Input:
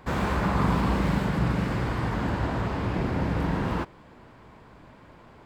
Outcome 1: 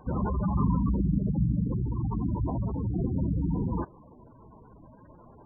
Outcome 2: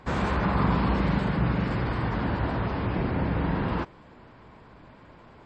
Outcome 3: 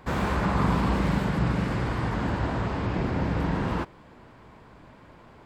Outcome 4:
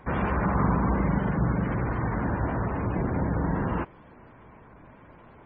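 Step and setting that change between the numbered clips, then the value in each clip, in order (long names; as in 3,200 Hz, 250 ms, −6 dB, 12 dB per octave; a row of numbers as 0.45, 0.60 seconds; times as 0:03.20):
gate on every frequency bin, under each frame's peak: −10, −40, −55, −25 decibels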